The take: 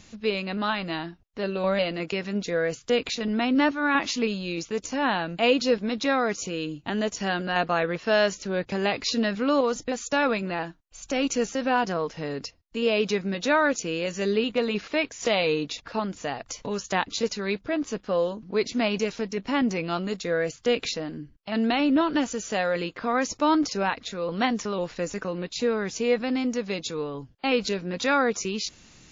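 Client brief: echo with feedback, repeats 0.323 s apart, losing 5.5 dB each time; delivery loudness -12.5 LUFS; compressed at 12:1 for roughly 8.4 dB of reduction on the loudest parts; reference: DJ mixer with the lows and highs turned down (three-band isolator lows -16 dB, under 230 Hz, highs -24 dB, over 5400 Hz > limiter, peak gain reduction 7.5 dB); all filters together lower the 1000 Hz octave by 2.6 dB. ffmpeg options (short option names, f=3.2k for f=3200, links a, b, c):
-filter_complex "[0:a]equalizer=f=1k:t=o:g=-3.5,acompressor=threshold=-26dB:ratio=12,acrossover=split=230 5400:gain=0.158 1 0.0631[a][b][c];[a][b][c]amix=inputs=3:normalize=0,aecho=1:1:323|646|969|1292|1615|1938|2261:0.531|0.281|0.149|0.079|0.0419|0.0222|0.0118,volume=21dB,alimiter=limit=-2dB:level=0:latency=1"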